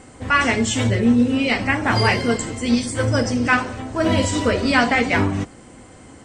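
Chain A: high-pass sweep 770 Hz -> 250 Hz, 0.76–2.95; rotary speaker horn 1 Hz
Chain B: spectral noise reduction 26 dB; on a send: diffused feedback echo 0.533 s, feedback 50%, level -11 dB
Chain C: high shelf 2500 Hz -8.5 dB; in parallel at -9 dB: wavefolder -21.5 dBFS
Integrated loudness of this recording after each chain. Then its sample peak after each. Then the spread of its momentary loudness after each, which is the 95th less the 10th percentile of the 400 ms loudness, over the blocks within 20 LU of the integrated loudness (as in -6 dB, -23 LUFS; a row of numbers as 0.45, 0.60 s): -19.5, -20.0, -19.5 LUFS; -3.0, -4.5, -5.5 dBFS; 9, 9, 5 LU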